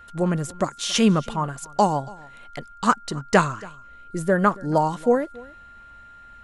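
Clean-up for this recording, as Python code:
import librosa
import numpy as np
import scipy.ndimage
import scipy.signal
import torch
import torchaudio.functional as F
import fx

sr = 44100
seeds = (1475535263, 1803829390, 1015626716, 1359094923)

y = fx.notch(x, sr, hz=1400.0, q=30.0)
y = fx.fix_echo_inverse(y, sr, delay_ms=279, level_db=-22.5)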